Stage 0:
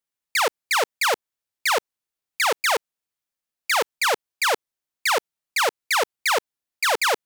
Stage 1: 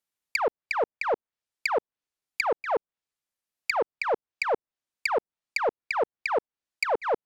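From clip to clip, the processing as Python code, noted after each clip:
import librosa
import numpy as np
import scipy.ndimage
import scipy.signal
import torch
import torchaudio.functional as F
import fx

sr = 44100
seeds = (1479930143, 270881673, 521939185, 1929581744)

y = fx.transient(x, sr, attack_db=3, sustain_db=-2)
y = fx.env_lowpass_down(y, sr, base_hz=740.0, full_db=-20.0)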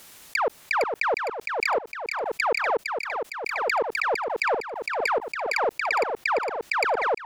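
y = fx.echo_feedback(x, sr, ms=459, feedback_pct=46, wet_db=-5.5)
y = fx.pre_swell(y, sr, db_per_s=29.0)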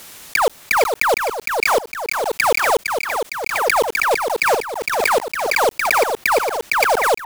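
y = fx.block_float(x, sr, bits=3)
y = y * librosa.db_to_amplitude(7.5)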